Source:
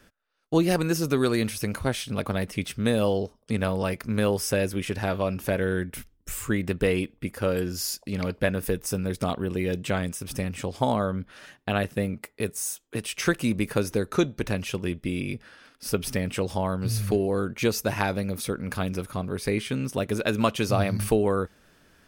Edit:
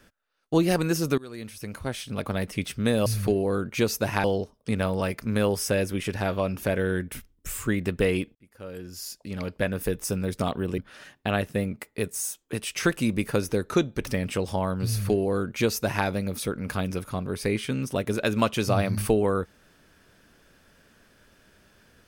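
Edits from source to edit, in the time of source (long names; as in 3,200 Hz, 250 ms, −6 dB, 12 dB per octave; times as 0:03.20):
0:01.18–0:02.49: fade in, from −23.5 dB
0:07.17–0:08.81: fade in
0:09.60–0:11.20: remove
0:14.49–0:16.09: remove
0:16.90–0:18.08: duplicate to 0:03.06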